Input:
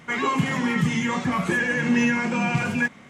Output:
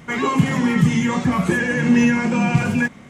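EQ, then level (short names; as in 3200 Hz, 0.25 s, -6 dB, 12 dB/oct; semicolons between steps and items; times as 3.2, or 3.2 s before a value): tilt shelf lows +3.5 dB, about 850 Hz; low shelf 67 Hz +9 dB; high shelf 5200 Hz +7 dB; +2.5 dB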